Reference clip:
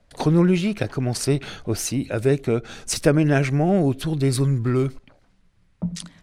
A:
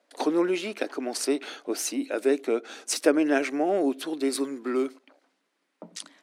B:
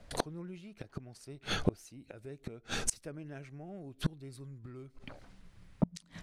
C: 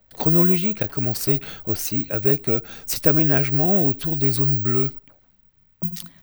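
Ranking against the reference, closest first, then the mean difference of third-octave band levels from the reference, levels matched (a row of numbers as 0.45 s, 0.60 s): C, A, B; 1.5 dB, 6.5 dB, 9.0 dB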